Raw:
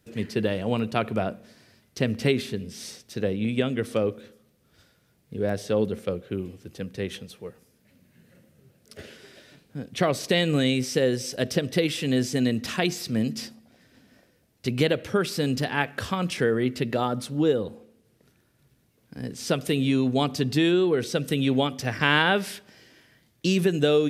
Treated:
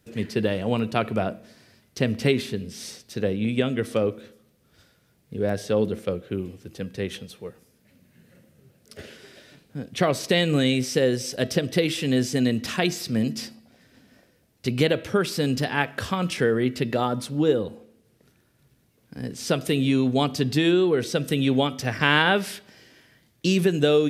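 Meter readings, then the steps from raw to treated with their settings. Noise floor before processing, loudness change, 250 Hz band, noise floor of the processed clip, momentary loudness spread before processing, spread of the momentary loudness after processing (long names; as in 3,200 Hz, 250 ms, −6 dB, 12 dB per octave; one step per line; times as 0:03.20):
−65 dBFS, +1.5 dB, +1.5 dB, −64 dBFS, 15 LU, 15 LU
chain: hum removal 325.7 Hz, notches 16
level +1.5 dB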